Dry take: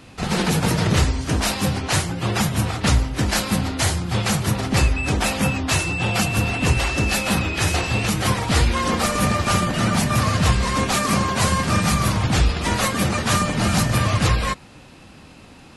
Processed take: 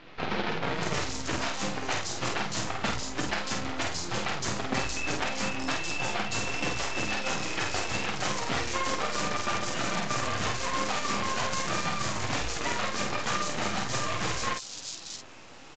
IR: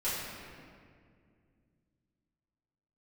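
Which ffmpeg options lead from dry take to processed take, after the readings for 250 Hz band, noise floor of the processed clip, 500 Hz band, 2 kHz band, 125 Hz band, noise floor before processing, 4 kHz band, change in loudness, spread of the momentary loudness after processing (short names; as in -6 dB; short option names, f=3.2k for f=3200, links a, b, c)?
-13.5 dB, -44 dBFS, -8.0 dB, -7.0 dB, -18.5 dB, -45 dBFS, -7.5 dB, -10.0 dB, 3 LU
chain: -filter_complex "[0:a]bass=f=250:g=-11,treble=f=4k:g=0,acompressor=threshold=-28dB:ratio=4,acrusher=bits=5:dc=4:mix=0:aa=0.000001,flanger=delay=5.7:depth=3.6:regen=-43:speed=1.2:shape=triangular,asplit=2[a][b];[b]adelay=49,volume=-4.5dB[c];[a][c]amix=inputs=2:normalize=0,acrossover=split=4000[d][e];[e]adelay=630[f];[d][f]amix=inputs=2:normalize=0,aresample=16000,aresample=44100,volume=4.5dB"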